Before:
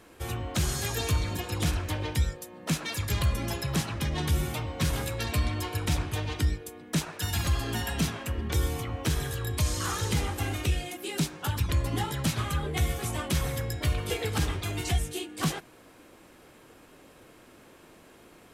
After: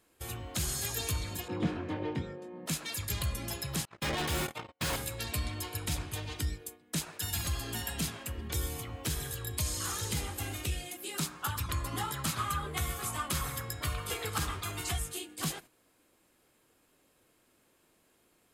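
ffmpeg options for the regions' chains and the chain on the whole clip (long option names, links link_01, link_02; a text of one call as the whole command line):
ffmpeg -i in.wav -filter_complex "[0:a]asettb=1/sr,asplit=3[link_01][link_02][link_03];[link_01]atrim=end=1.484[link_04];[link_02]atrim=start=1.48:end=2.66,asetpts=PTS-STARTPTS,afade=type=in:duration=0.004:curve=qsin,afade=type=out:start_time=1.176:duration=0.004:curve=qsin,highpass=160,lowpass=2100,equalizer=frequency=230:width_type=o:width=2.4:gain=11,asplit=2[link_05][link_06];[link_06]adelay=22,volume=-6dB[link_07];[link_05][link_07]amix=inputs=2:normalize=0,atrim=end_sample=52038[link_08];[link_03]atrim=start=2.656[link_09];[link_04][link_08]acrossfade=duration=0.004:curve1=hsin:curve2=qsin[link_10];[link_10][link_09]acrossfade=duration=0.004:curve1=qsin:curve2=hsin,asettb=1/sr,asplit=3[link_11][link_12][link_13];[link_11]atrim=end=3.854[link_14];[link_12]atrim=start=3.85:end=4.96,asetpts=PTS-STARTPTS,afade=type=in:duration=0.004:curve=qsin,afade=type=out:start_time=1.106:duration=0.004:curve=qsin,agate=range=-57dB:threshold=-29dB:ratio=16:release=100:detection=peak,asplit=2[link_15][link_16];[link_16]highpass=frequency=720:poles=1,volume=40dB,asoftclip=type=tanh:threshold=-16dB[link_17];[link_15][link_17]amix=inputs=2:normalize=0,lowpass=frequency=1600:poles=1,volume=-6dB[link_18];[link_13]atrim=start=4.956[link_19];[link_14][link_18]acrossfade=duration=0.004:curve1=hsin:curve2=qsin[link_20];[link_20][link_19]acrossfade=duration=0.004:curve1=qsin:curve2=hsin,asettb=1/sr,asplit=3[link_21][link_22][link_23];[link_21]atrim=end=11.144[link_24];[link_22]atrim=start=11.14:end=15.17,asetpts=PTS-STARTPTS,afade=type=in:duration=0.004:curve=qsin,afade=type=out:start_time=4.026:duration=0.004:curve=qsin,equalizer=frequency=1200:width_type=o:width=0.69:gain=11.5,bandreject=frequency=60:width_type=h:width=6,bandreject=frequency=120:width_type=h:width=6,bandreject=frequency=180:width_type=h:width=6,bandreject=frequency=240:width_type=h:width=6,bandreject=frequency=300:width_type=h:width=6,bandreject=frequency=360:width_type=h:width=6,bandreject=frequency=420:width_type=h:width=6,bandreject=frequency=480:width_type=h:width=6,bandreject=frequency=540:width_type=h:width=6,bandreject=frequency=600:width_type=h:width=6[link_25];[link_23]atrim=start=15.166[link_26];[link_24][link_25]acrossfade=duration=0.004:curve1=hsin:curve2=qsin[link_27];[link_27][link_26]acrossfade=duration=0.004:curve1=qsin:curve2=hsin,agate=range=-9dB:threshold=-43dB:ratio=16:detection=peak,highshelf=frequency=4200:gain=10.5,bandreject=frequency=5800:width=15,volume=-8dB" out.wav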